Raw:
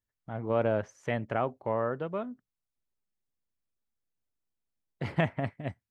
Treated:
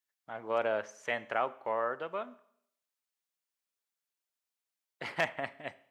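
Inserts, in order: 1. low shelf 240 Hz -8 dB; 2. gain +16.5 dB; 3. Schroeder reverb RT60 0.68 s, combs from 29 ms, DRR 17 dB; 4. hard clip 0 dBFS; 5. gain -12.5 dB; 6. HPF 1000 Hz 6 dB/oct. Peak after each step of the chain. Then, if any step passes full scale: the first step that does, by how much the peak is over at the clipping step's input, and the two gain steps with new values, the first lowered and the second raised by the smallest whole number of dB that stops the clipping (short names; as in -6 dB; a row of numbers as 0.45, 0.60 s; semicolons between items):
-12.5, +4.0, +4.0, 0.0, -12.5, -14.0 dBFS; step 2, 4.0 dB; step 2 +12.5 dB, step 5 -8.5 dB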